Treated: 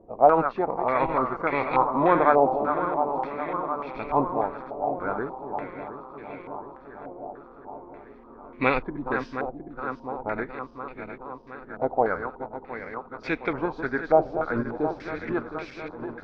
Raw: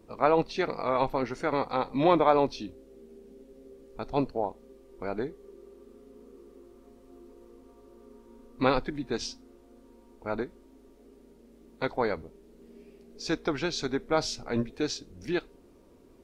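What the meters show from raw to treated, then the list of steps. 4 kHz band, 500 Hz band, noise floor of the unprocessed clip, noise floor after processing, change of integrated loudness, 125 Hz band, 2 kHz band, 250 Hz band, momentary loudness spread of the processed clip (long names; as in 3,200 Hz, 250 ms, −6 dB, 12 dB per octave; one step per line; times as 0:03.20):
−11.0 dB, +4.5 dB, −57 dBFS, −48 dBFS, +3.5 dB, +1.5 dB, +6.5 dB, +2.0 dB, 19 LU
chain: feedback delay that plays each chunk backwards 357 ms, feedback 82%, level −9 dB
low-pass on a step sequencer 3.4 Hz 730–2,300 Hz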